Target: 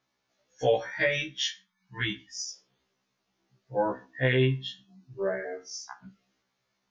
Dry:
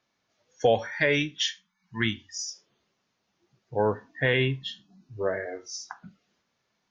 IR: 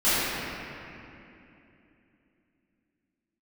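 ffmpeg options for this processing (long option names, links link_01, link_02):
-filter_complex "[0:a]asettb=1/sr,asplit=3[link_01][link_02][link_03];[link_01]atrim=end=5.184[link_04];[link_02]atrim=start=5.18:end=6.01,asetpts=PTS-STARTPTS,afade=type=in:duration=0.004:curve=qsin,afade=type=out:start_time=0.826:duration=0.004:curve=qsin,bandreject=frequency=3800:width=12[link_05];[link_03]atrim=start=6.006[link_06];[link_04][link_05]acrossfade=duration=0.004:curve1=hsin:curve2=qsin[link_07];[link_07][link_06]acrossfade=duration=0.004:curve1=qsin:curve2=hsin,asplit=2[link_08][link_09];[1:a]atrim=start_sample=2205,afade=type=out:start_time=0.19:duration=0.01,atrim=end_sample=8820[link_10];[link_09][link_10]afir=irnorm=-1:irlink=0,volume=-38.5dB[link_11];[link_08][link_11]amix=inputs=2:normalize=0,afftfilt=real='re*1.73*eq(mod(b,3),0)':imag='im*1.73*eq(mod(b,3),0)':win_size=2048:overlap=0.75"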